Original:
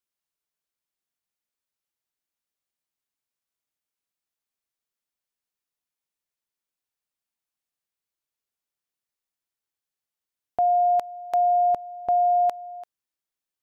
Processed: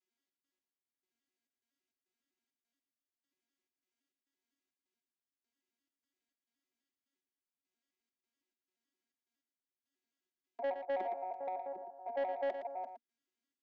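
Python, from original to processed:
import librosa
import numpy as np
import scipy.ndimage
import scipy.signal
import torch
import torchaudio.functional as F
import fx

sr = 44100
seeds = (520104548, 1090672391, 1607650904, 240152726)

y = fx.vocoder_arp(x, sr, chord='major triad', root=54, every_ms=85)
y = scipy.signal.sosfilt(scipy.signal.butter(4, 230.0, 'highpass', fs=sr, output='sos'), y)
y = fx.band_shelf(y, sr, hz=830.0, db=-8.0, octaves=1.7)
y = y + 0.83 * np.pad(y, (int(3.0 * sr / 1000.0), 0))[:len(y)]
y = fx.over_compress(y, sr, threshold_db=-32.0, ratio=-0.5)
y = fx.step_gate(y, sr, bpm=102, pattern='xx.x...xxx.xx.x', floor_db=-12.0, edge_ms=4.5)
y = 10.0 ** (-30.5 / 20.0) * np.tanh(y / 10.0 ** (-30.5 / 20.0))
y = fx.echo_multitap(y, sr, ms=(49, 115), db=(-17.5, -9.0))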